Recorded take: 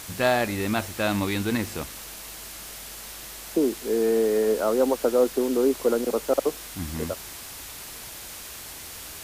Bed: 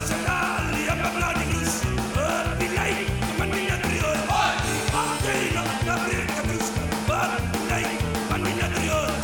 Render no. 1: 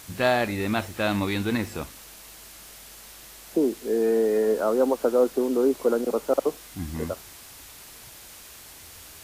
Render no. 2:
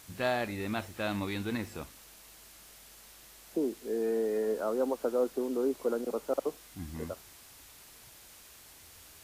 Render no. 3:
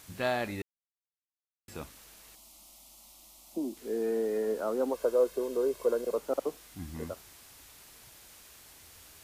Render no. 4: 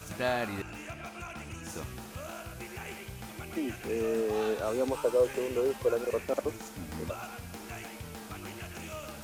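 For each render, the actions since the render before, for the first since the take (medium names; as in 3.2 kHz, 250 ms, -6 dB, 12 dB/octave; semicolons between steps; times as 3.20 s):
noise print and reduce 6 dB
trim -8.5 dB
0.62–1.68 s: mute; 2.35–3.77 s: static phaser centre 440 Hz, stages 6; 4.94–6.18 s: comb 1.9 ms, depth 64%
add bed -18 dB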